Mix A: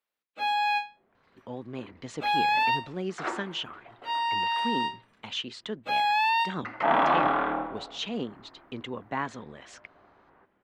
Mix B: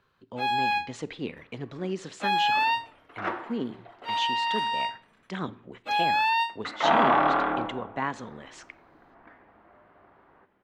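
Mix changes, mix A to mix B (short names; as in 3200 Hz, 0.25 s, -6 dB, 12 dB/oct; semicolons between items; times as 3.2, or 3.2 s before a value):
speech: entry -1.15 s; reverb: on, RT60 0.60 s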